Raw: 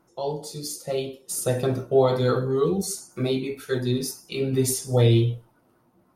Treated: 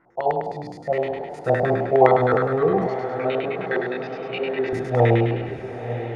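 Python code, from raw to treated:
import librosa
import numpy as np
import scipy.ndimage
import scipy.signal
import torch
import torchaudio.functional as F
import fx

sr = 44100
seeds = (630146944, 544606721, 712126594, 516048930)

p1 = fx.spec_trails(x, sr, decay_s=1.26)
p2 = fx.filter_lfo_lowpass(p1, sr, shape='square', hz=9.7, low_hz=760.0, high_hz=1900.0, q=6.7)
p3 = fx.cabinet(p2, sr, low_hz=400.0, low_slope=12, high_hz=5100.0, hz=(550.0, 1700.0, 2800.0), db=(4, -4, 8), at=(2.87, 4.73))
p4 = p3 + fx.echo_diffused(p3, sr, ms=926, feedback_pct=55, wet_db=-11.0, dry=0)
y = p4 * 10.0 ** (-2.0 / 20.0)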